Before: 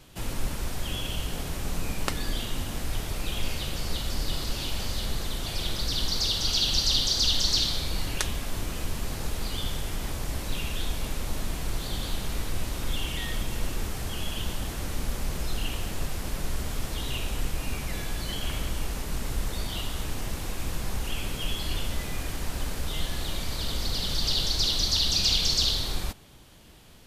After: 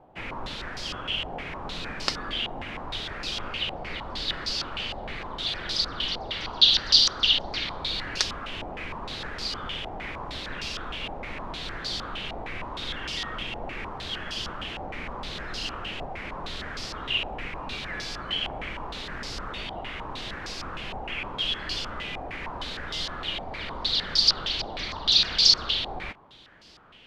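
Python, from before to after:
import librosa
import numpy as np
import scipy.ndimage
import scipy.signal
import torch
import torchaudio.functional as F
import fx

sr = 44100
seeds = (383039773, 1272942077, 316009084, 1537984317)

y = fx.low_shelf(x, sr, hz=160.0, db=-12.0)
y = fx.filter_held_lowpass(y, sr, hz=6.5, low_hz=780.0, high_hz=4900.0)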